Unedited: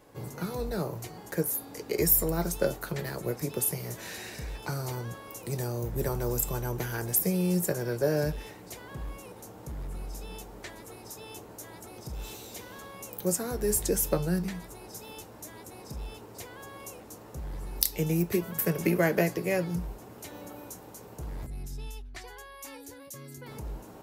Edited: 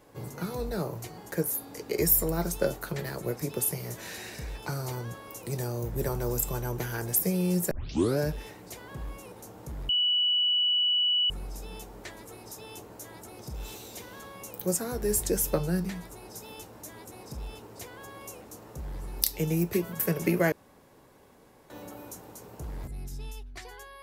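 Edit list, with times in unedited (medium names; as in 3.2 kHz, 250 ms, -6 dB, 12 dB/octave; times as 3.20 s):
7.71 s: tape start 0.48 s
9.89 s: add tone 2.95 kHz -22 dBFS 1.41 s
19.11–20.29 s: room tone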